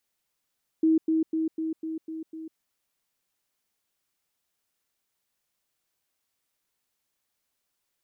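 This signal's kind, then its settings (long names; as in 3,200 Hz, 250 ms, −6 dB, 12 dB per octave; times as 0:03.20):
level staircase 320 Hz −17.5 dBFS, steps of −3 dB, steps 7, 0.15 s 0.10 s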